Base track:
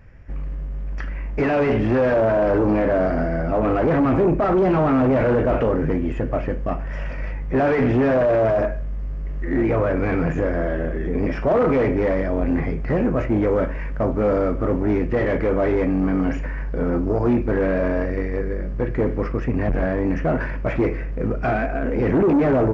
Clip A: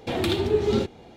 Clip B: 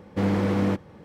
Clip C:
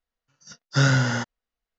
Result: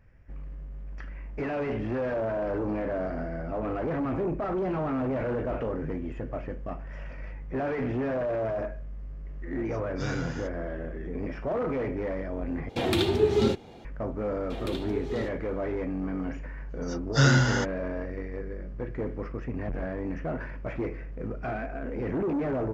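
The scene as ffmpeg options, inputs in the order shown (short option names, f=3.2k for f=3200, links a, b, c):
-filter_complex "[3:a]asplit=2[a][b];[1:a]asplit=2[c][d];[0:a]volume=-11.5dB,asplit=2[e][f];[e]atrim=end=12.694[g];[c]atrim=end=1.16,asetpts=PTS-STARTPTS,volume=-0.5dB[h];[f]atrim=start=13.846[i];[a]atrim=end=1.78,asetpts=PTS-STARTPTS,volume=-16dB,afade=t=in:d=0.004:c=hsin,afade=t=out:st=1.776:d=0.004:c=hsin,adelay=9240[j];[d]atrim=end=1.16,asetpts=PTS-STARTPTS,volume=-12dB,afade=t=in:d=0.004:c=hsin,afade=t=out:st=1.156:d=0.004:c=hsin,adelay=14430[k];[b]atrim=end=1.78,asetpts=PTS-STARTPTS,volume=-1.5dB,afade=t=in:d=0.004:c=hsin,afade=t=out:st=1.776:d=0.004:c=hsin,adelay=16410[l];[g][h]acrossfade=d=0.004:c1=hsin:c2=hsin[m];[m][i]acrossfade=d=0.004:c1=hsin:c2=hsin[n];[n][j][k][l]amix=inputs=4:normalize=0"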